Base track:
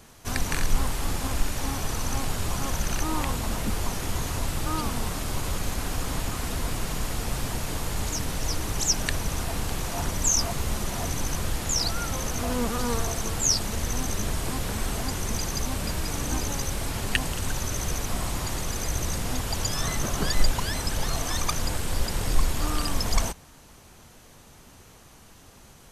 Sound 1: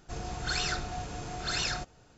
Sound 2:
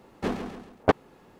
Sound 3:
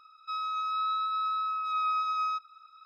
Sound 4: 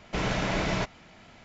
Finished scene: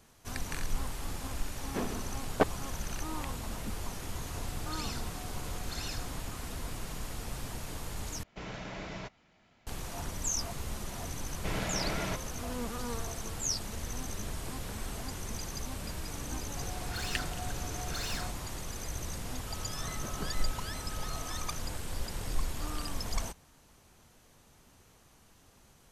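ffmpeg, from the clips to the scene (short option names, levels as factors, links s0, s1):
-filter_complex "[1:a]asplit=2[s0][s1];[4:a]asplit=2[s2][s3];[0:a]volume=0.316[s4];[s0]acrossover=split=390|3000[s5][s6][s7];[s6]acompressor=threshold=0.0112:ratio=6:attack=3.2:release=140:knee=2.83:detection=peak[s8];[s5][s8][s7]amix=inputs=3:normalize=0[s9];[s1]asoftclip=type=tanh:threshold=0.02[s10];[3:a]equalizer=f=3200:w=0.94:g=-14[s11];[s4]asplit=2[s12][s13];[s12]atrim=end=8.234[s14];[s2]atrim=end=1.44,asetpts=PTS-STARTPTS,volume=0.211[s15];[s13]atrim=start=9.666[s16];[2:a]atrim=end=1.39,asetpts=PTS-STARTPTS,volume=0.501,afade=t=in:d=0.004:c=hsin,afade=t=out:st=1.386:d=0.004:c=hsin,adelay=1520[s17];[s9]atrim=end=2.17,asetpts=PTS-STARTPTS,volume=0.376,afade=t=in:d=0.004:c=hsin,afade=t=out:st=2.166:d=0.004:c=hsin,adelay=4240[s18];[s3]atrim=end=1.44,asetpts=PTS-STARTPTS,volume=0.447,afade=t=in:d=0.004:c=hsin,afade=t=out:st=1.436:d=0.004:c=hsin,adelay=11310[s19];[s10]atrim=end=2.17,asetpts=PTS-STARTPTS,volume=0.841,afade=t=in:d=0.004:c=hsin,afade=t=out:st=2.166:d=0.004:c=hsin,adelay=16470[s20];[s11]atrim=end=2.85,asetpts=PTS-STARTPTS,volume=0.141,afade=t=in:d=0.004:c=hsin,afade=t=out:st=2.846:d=0.004:c=hsin,adelay=19180[s21];[s14][s15]acrossfade=d=0.004:c1=hsin:c2=hsin[s22];[s22][s16]acrossfade=d=0.004:c1=hsin:c2=hsin[s23];[s23][s17][s18][s19][s20][s21]amix=inputs=6:normalize=0"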